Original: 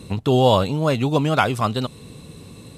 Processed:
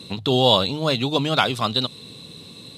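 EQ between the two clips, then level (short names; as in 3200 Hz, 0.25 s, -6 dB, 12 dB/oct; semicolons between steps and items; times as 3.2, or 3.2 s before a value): HPF 110 Hz; bell 3800 Hz +14.5 dB 0.67 oct; notches 50/100/150 Hz; -2.5 dB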